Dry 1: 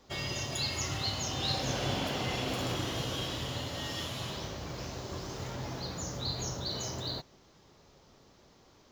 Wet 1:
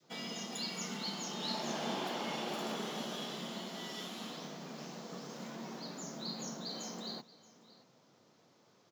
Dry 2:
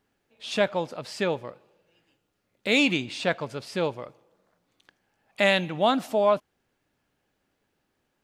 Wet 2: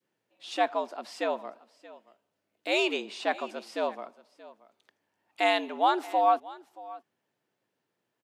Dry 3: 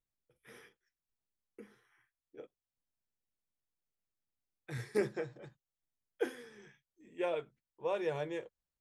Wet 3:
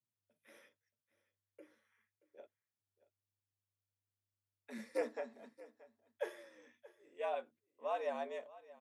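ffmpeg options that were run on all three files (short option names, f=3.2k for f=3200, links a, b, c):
-filter_complex "[0:a]adynamicequalizer=threshold=0.0126:dfrequency=800:dqfactor=0.77:tfrequency=800:tqfactor=0.77:attack=5:release=100:ratio=0.375:range=3:mode=boostabove:tftype=bell,afreqshift=99,asplit=2[a][b];[b]aecho=0:1:628:0.106[c];[a][c]amix=inputs=2:normalize=0,volume=-6.5dB"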